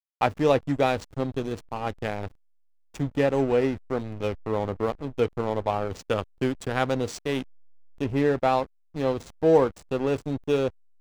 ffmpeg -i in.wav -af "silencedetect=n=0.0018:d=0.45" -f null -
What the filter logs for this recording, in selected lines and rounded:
silence_start: 2.35
silence_end: 2.94 | silence_duration: 0.59